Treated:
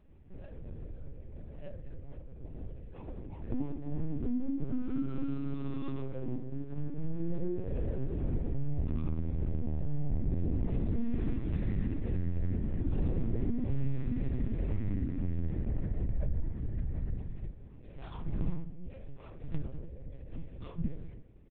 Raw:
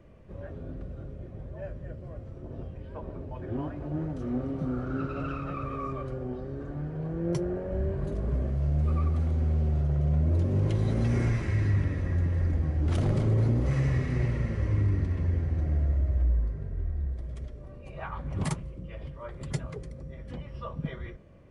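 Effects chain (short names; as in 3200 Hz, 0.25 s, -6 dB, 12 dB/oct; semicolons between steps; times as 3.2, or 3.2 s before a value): median filter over 25 samples; gate -35 dBFS, range -8 dB; harmoniser -4 st -17 dB; dynamic EQ 350 Hz, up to +7 dB, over -44 dBFS, Q 0.78; HPF 45 Hz 6 dB/oct; reverb RT60 0.45 s, pre-delay 3 ms, DRR -0.5 dB; LPC vocoder at 8 kHz pitch kept; compressor 2.5:1, threshold -38 dBFS, peak gain reduction 13.5 dB; low shelf 120 Hz +9 dB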